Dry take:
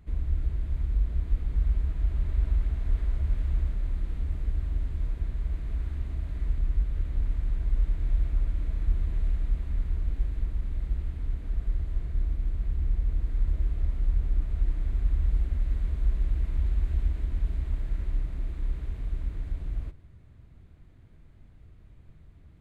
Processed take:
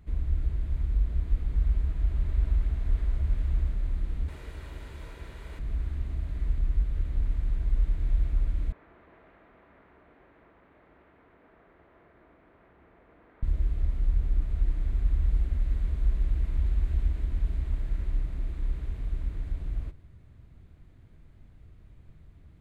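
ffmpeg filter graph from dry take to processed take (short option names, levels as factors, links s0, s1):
-filter_complex "[0:a]asettb=1/sr,asplit=3[s0][s1][s2];[s0]atrim=end=4.284[s3];[s1]atrim=start=4.28:end=5.59,asetpts=PTS-STARTPTS,afade=t=in:d=0.004:c=qsin,afade=t=out:st=1.306:d=0.004:c=qsin,highpass=f=570:p=1,aecho=1:1:2.1:0.32,atrim=end_sample=57771,acontrast=62[s4];[s2]atrim=start=5.586[s5];[s3][s4]acrossfade=d=0.004:c1=hsin:c2=qsin[s6];[s6][s5]acrossfade=d=0.004:c1=qsin:c2=hsin,asettb=1/sr,asplit=3[s7][s8][s9];[s7]atrim=end=8.724[s10];[s8]atrim=start=8.72:end=13.43,asetpts=PTS-STARTPTS,afade=t=in:d=0.004:c=qsin,afade=t=out:st=4.706:d=0.004:c=qsin,highpass=540,lowpass=2000,aemphasis=mode=reproduction:type=75fm[s11];[s9]atrim=start=13.426[s12];[s10][s11]acrossfade=d=0.004:c1=hsin:c2=qsin[s13];[s13][s12]acrossfade=d=0.004:c1=qsin:c2=hsin"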